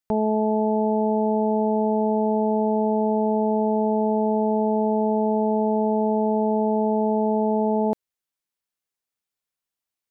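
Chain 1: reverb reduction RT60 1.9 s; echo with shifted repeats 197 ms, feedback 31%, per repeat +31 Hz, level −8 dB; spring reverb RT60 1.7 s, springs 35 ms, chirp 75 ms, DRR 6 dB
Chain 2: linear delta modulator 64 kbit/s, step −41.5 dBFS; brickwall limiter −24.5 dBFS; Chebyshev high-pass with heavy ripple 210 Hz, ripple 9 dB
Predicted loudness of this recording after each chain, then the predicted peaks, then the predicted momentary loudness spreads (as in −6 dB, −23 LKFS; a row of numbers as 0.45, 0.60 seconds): −30.0, −35.0 LKFS; −14.5, −27.0 dBFS; 1, 20 LU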